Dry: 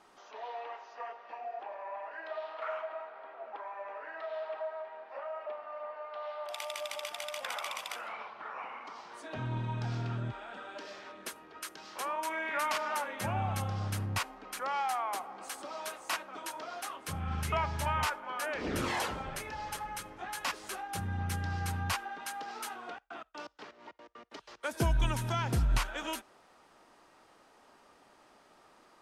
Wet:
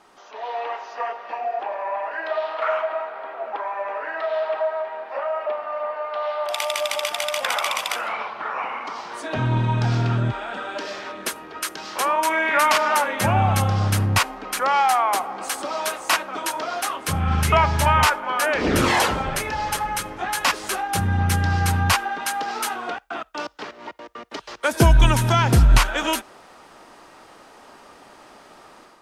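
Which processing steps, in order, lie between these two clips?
AGC gain up to 7.5 dB; gain +7 dB

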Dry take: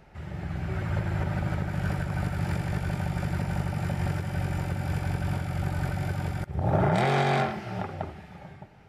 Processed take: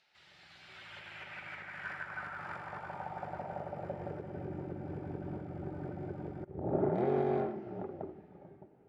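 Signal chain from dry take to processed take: band-pass sweep 4000 Hz -> 360 Hz, 0.57–4.54; harmoniser -7 st -15 dB; gain +1 dB

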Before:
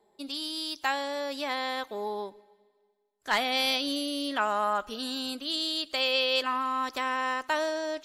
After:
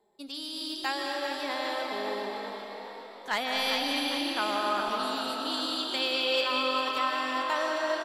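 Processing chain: frequency-shifting echo 0.4 s, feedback 54%, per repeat +46 Hz, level -7.5 dB; on a send at -1 dB: reverb RT60 3.2 s, pre-delay 0.115 s; on the sum: gain -3.5 dB

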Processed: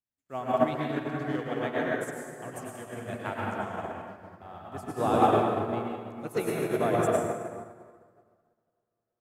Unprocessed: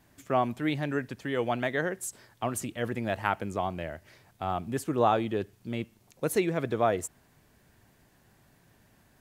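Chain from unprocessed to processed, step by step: reverb RT60 4.6 s, pre-delay 88 ms, DRR -6 dB; upward expander 2.5:1, over -43 dBFS

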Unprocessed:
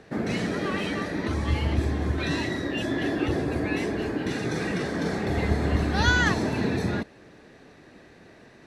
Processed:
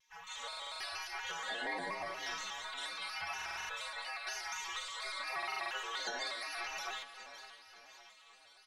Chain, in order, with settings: moving spectral ripple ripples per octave 0.9, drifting +0.89 Hz, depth 15 dB; tilt -2.5 dB/oct; spectral gate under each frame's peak -30 dB weak; AGC gain up to 10 dB; feedback echo 0.563 s, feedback 48%, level -18 dB; compressor 3:1, threshold -34 dBFS, peak gain reduction 10 dB; metallic resonator 90 Hz, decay 0.45 s, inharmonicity 0.008; soft clip -30.5 dBFS, distortion -34 dB; on a send at -10 dB: reverb RT60 0.70 s, pre-delay 3 ms; on the sum: stuck buffer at 0.48/3.37/5.38, samples 2048, times 6; shaped vibrato square 4.2 Hz, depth 100 cents; gain +6 dB

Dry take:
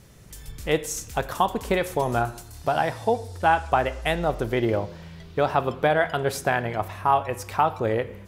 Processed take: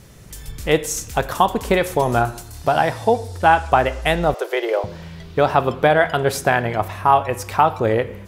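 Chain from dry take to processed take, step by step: 4.34–4.84 steep high-pass 390 Hz 48 dB/oct; gain +6 dB

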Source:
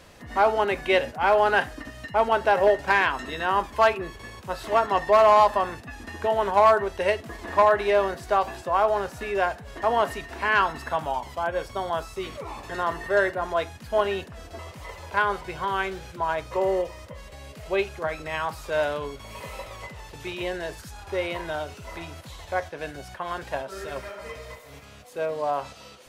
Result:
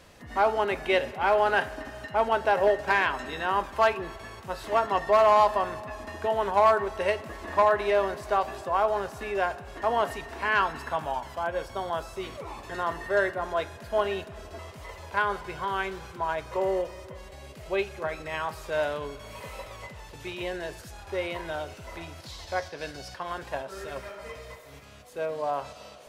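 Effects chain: 22.2–23.23 bell 4900 Hz +11.5 dB 0.74 oct; digital reverb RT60 3.7 s, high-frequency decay 0.85×, pre-delay 20 ms, DRR 16.5 dB; gain -3 dB

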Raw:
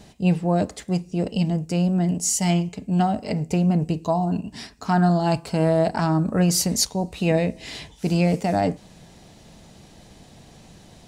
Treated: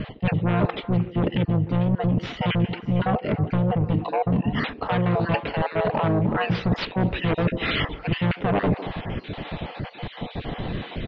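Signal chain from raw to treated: random spectral dropouts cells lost 35%; in parallel at -11 dB: sine folder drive 14 dB, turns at -8 dBFS; on the sum: steep low-pass 3600 Hz 48 dB/oct; reverse; compressor 12:1, threshold -30 dBFS, peak gain reduction 15.5 dB; reverse; harmoniser -7 st -3 dB; delay with a stepping band-pass 0.152 s, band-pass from 370 Hz, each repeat 1.4 oct, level -9.5 dB; gain +8 dB

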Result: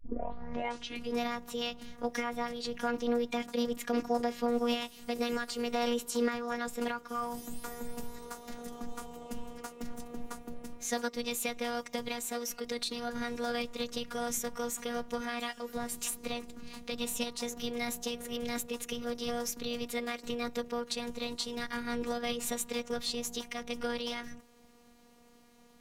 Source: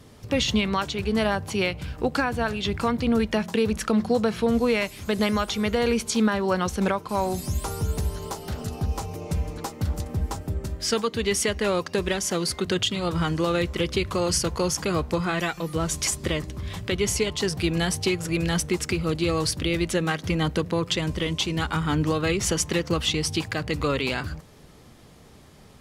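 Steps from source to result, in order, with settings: tape start at the beginning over 1.22 s; robotiser 239 Hz; formant shift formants +4 st; gain -8 dB

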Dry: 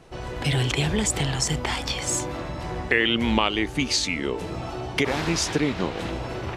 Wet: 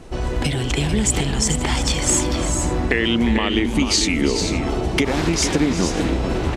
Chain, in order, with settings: low shelf 220 Hz +12 dB; compressor, threshold -20 dBFS, peak gain reduction 9 dB; graphic EQ 125/250/8000 Hz -9/+4/+5 dB; on a send: tapped delay 0.352/0.444/0.522 s -13/-7.5/-19 dB; on the sum: gain +5 dB

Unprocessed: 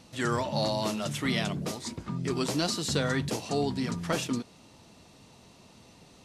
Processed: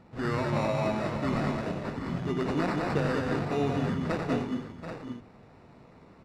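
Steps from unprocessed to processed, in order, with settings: sample-rate reducer 3200 Hz, jitter 0%; tape spacing loss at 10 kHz 21 dB; on a send: tapped delay 91/191/211/421/733/782 ms -7.5/-5/-7/-19/-11.5/-9.5 dB

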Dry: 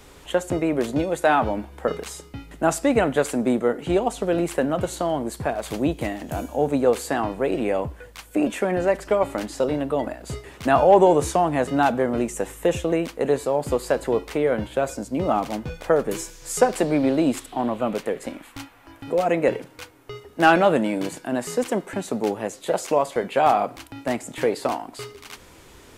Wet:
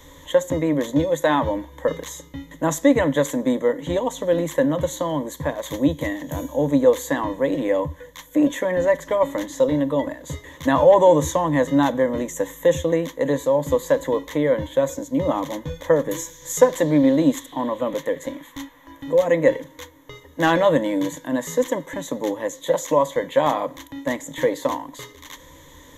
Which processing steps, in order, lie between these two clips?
ripple EQ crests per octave 1.1, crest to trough 15 dB; gain -1.5 dB

